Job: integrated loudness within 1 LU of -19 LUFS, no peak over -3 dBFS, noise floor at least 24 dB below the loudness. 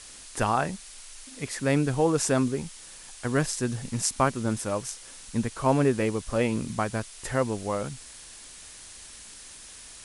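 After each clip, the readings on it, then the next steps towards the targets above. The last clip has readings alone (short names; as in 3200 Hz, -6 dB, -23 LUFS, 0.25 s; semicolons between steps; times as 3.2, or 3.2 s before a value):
noise floor -46 dBFS; noise floor target -52 dBFS; loudness -27.5 LUFS; peak -8.5 dBFS; loudness target -19.0 LUFS
-> denoiser 6 dB, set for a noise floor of -46 dBFS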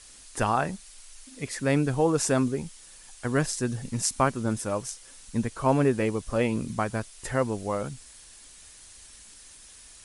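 noise floor -50 dBFS; noise floor target -52 dBFS
-> denoiser 6 dB, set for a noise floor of -50 dBFS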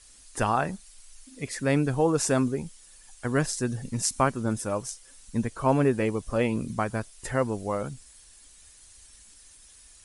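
noise floor -53 dBFS; loudness -27.5 LUFS; peak -8.5 dBFS; loudness target -19.0 LUFS
-> gain +8.5 dB; limiter -3 dBFS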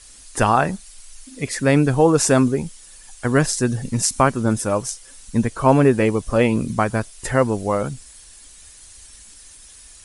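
loudness -19.5 LUFS; peak -3.0 dBFS; noise floor -45 dBFS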